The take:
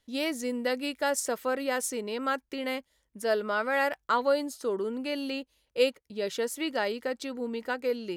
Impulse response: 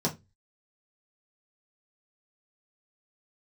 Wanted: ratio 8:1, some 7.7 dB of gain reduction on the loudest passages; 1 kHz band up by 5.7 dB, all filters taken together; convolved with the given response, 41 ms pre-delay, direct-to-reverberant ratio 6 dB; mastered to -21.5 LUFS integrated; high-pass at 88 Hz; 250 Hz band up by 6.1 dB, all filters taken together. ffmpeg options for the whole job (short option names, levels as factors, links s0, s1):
-filter_complex "[0:a]highpass=88,equalizer=f=250:t=o:g=6.5,equalizer=f=1000:t=o:g=7,acompressor=threshold=0.0631:ratio=8,asplit=2[s0][s1];[1:a]atrim=start_sample=2205,adelay=41[s2];[s1][s2]afir=irnorm=-1:irlink=0,volume=0.2[s3];[s0][s3]amix=inputs=2:normalize=0,volume=1.88"